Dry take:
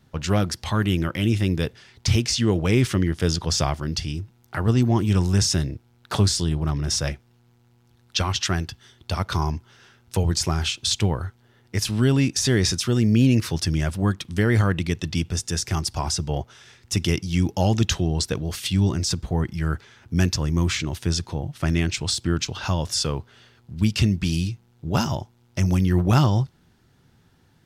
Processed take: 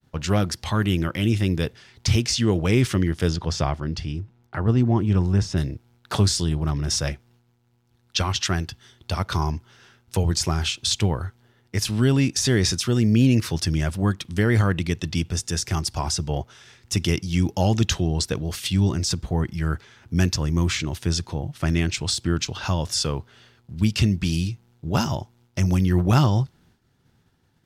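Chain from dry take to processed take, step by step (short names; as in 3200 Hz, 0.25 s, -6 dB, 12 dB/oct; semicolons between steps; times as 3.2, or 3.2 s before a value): 3.28–5.56 LPF 2800 Hz -> 1200 Hz 6 dB/oct; expander -53 dBFS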